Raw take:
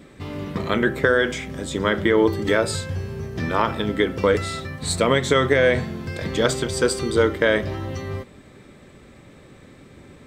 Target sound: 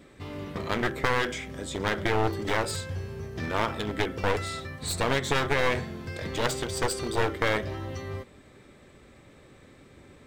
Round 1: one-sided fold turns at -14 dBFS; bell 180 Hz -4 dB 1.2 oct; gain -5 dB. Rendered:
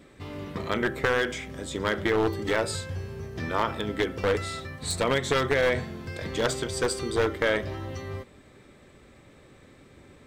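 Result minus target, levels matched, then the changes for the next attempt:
one-sided fold: distortion -9 dB
change: one-sided fold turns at -20.5 dBFS

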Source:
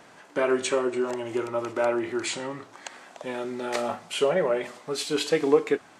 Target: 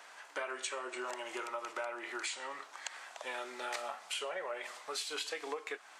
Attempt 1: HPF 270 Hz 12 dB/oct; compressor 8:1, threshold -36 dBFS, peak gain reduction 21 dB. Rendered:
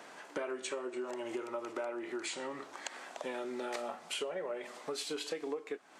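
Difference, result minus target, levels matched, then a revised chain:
250 Hz band +8.5 dB
HPF 890 Hz 12 dB/oct; compressor 8:1, threshold -36 dBFS, peak gain reduction 12 dB

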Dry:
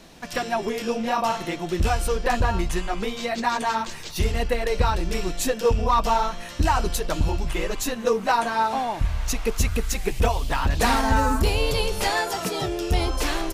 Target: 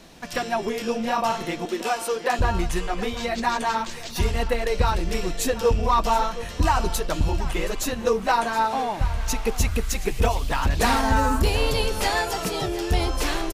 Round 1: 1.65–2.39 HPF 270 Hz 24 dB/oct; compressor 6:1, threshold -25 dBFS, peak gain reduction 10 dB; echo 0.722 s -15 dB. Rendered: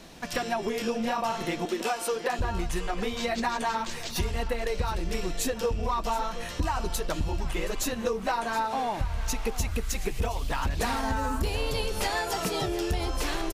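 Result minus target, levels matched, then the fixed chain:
compressor: peak gain reduction +10 dB
1.65–2.39 HPF 270 Hz 24 dB/oct; echo 0.722 s -15 dB

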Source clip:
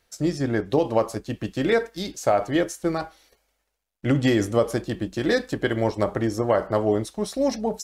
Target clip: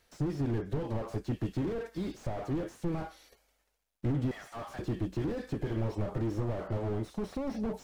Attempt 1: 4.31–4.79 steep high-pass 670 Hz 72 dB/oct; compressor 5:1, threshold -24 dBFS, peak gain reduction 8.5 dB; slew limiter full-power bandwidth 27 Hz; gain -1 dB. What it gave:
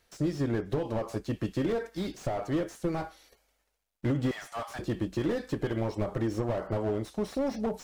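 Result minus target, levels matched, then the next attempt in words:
slew limiter: distortion -9 dB
4.31–4.79 steep high-pass 670 Hz 72 dB/oct; compressor 5:1, threshold -24 dBFS, peak gain reduction 8.5 dB; slew limiter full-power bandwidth 11 Hz; gain -1 dB

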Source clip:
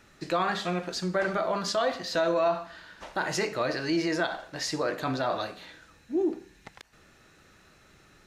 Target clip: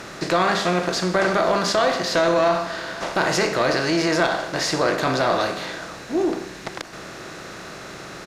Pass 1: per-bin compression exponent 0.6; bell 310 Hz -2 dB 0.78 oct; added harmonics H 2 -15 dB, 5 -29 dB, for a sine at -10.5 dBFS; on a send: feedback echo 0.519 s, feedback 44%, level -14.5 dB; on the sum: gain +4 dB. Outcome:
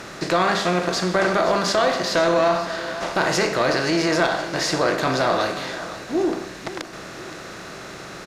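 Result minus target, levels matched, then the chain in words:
echo-to-direct +7.5 dB
per-bin compression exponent 0.6; bell 310 Hz -2 dB 0.78 oct; added harmonics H 2 -15 dB, 5 -29 dB, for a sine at -10.5 dBFS; on a send: feedback echo 0.519 s, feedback 44%, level -22 dB; on the sum: gain +4 dB

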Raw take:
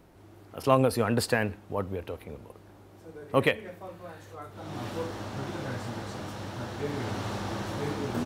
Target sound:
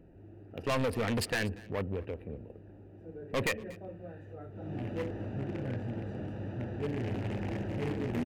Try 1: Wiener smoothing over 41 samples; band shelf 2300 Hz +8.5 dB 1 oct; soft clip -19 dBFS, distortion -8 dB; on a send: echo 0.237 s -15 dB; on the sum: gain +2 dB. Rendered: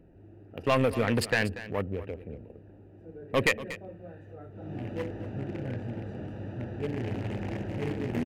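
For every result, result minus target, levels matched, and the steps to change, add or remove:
echo-to-direct +7 dB; soft clip: distortion -6 dB
change: echo 0.237 s -22 dB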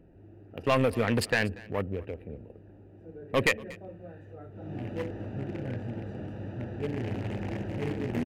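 soft clip: distortion -6 dB
change: soft clip -28.5 dBFS, distortion -3 dB

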